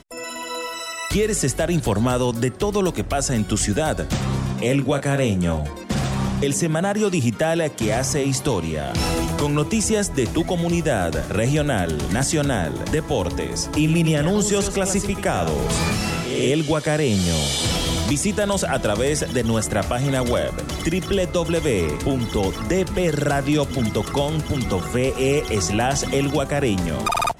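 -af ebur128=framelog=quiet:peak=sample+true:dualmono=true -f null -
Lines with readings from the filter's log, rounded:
Integrated loudness:
  I:         -18.4 LUFS
  Threshold: -28.4 LUFS
Loudness range:
  LRA:         1.4 LU
  Threshold: -38.4 LUFS
  LRA low:   -19.0 LUFS
  LRA high:  -17.6 LUFS
Sample peak:
  Peak:       -9.7 dBFS
True peak:
  Peak:       -9.7 dBFS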